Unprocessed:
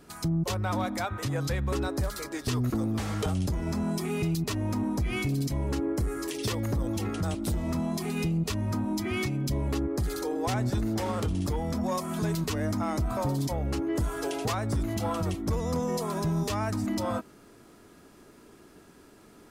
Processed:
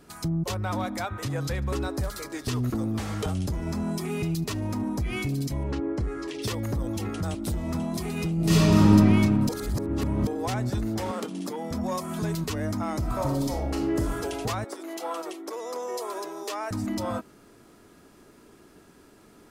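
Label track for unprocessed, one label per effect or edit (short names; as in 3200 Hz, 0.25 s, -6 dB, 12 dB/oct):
1.140000	4.900000	feedback echo 73 ms, feedback 59%, level -23.5 dB
5.630000	6.420000	LPF 4500 Hz
7.240000	7.760000	echo throw 0.49 s, feedback 70%, level -10 dB
8.350000	8.890000	reverb throw, RT60 2.8 s, DRR -11.5 dB
9.490000	10.270000	reverse
11.110000	11.710000	steep high-pass 190 Hz
12.980000	14.130000	reverb throw, RT60 0.84 s, DRR 2 dB
14.640000	16.710000	Chebyshev high-pass 340 Hz, order 4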